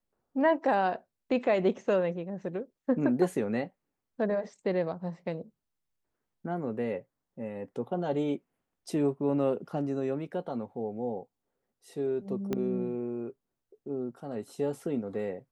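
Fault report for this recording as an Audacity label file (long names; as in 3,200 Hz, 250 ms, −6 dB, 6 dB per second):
12.530000	12.530000	click −18 dBFS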